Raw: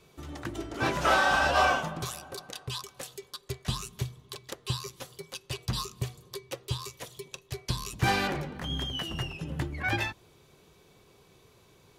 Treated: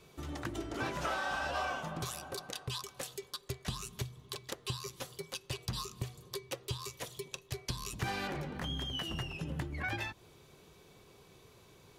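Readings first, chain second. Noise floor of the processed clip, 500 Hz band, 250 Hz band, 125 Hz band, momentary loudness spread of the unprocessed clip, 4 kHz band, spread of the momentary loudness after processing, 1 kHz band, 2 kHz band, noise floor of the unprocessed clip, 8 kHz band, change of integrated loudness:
-61 dBFS, -8.0 dB, -6.0 dB, -6.5 dB, 19 LU, -6.0 dB, 24 LU, -10.5 dB, -10.0 dB, -61 dBFS, -4.0 dB, -8.5 dB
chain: compression 4:1, threshold -35 dBFS, peak gain reduction 13.5 dB

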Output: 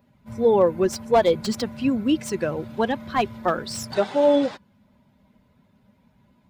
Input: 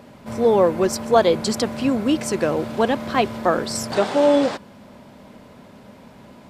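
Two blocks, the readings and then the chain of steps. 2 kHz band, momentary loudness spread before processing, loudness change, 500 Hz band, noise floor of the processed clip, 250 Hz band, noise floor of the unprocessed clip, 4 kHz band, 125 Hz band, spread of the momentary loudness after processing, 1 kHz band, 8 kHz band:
-4.0 dB, 7 LU, -2.5 dB, -2.5 dB, -62 dBFS, -2.5 dB, -46 dBFS, -4.5 dB, -3.0 dB, 9 LU, -3.0 dB, -6.0 dB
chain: expander on every frequency bin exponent 1.5; slew-rate limiter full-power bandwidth 200 Hz

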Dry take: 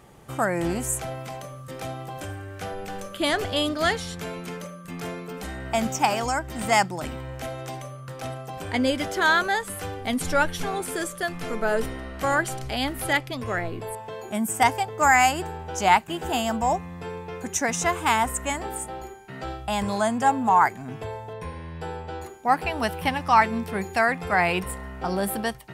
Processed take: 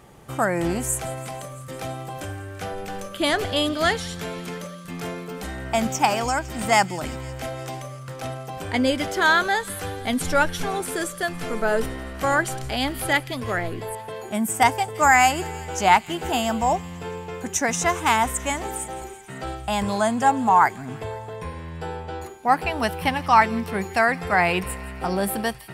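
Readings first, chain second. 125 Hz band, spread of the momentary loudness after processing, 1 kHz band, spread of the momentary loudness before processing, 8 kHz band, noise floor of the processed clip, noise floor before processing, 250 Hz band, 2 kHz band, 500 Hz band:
+2.0 dB, 16 LU, +2.0 dB, 16 LU, +2.0 dB, -38 dBFS, -40 dBFS, +2.0 dB, +2.0 dB, +2.0 dB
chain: feedback echo behind a high-pass 168 ms, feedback 77%, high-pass 2.5 kHz, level -17.5 dB; trim +2 dB

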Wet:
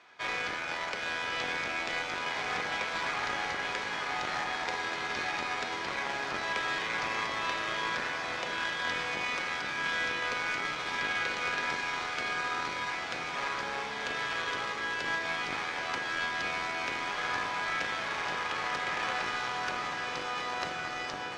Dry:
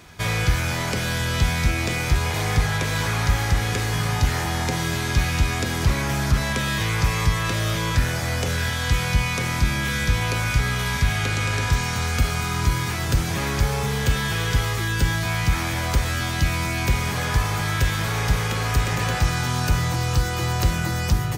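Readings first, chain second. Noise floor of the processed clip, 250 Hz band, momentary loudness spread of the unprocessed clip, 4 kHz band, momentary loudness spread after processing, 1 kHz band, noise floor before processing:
-37 dBFS, -17.0 dB, 2 LU, -8.0 dB, 3 LU, -4.5 dB, -26 dBFS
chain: octave divider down 1 oct, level +4 dB; high-pass 730 Hz 12 dB/octave; treble shelf 5.3 kHz -9 dB; in parallel at -6.5 dB: bit crusher 4-bit; on the sum: distance through air 120 m; on a send: echo that smears into a reverb 1002 ms, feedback 46%, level -5.5 dB; on the sum: trim -5 dB

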